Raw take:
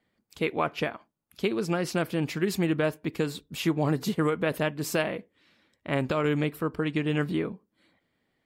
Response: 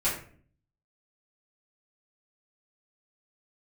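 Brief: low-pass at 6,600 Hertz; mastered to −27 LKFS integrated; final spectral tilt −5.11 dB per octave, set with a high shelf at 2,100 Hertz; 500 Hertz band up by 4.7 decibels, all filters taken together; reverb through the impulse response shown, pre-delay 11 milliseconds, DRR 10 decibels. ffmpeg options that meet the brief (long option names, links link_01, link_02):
-filter_complex "[0:a]lowpass=6600,equalizer=frequency=500:width_type=o:gain=6,highshelf=frequency=2100:gain=-6,asplit=2[link_01][link_02];[1:a]atrim=start_sample=2205,adelay=11[link_03];[link_02][link_03]afir=irnorm=-1:irlink=0,volume=-19.5dB[link_04];[link_01][link_04]amix=inputs=2:normalize=0,volume=-1dB"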